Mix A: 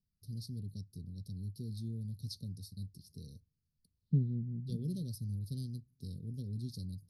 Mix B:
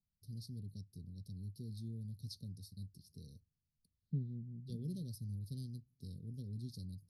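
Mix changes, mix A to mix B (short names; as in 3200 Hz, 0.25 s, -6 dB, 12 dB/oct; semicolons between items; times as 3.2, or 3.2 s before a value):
first voice -4.5 dB; second voice -8.5 dB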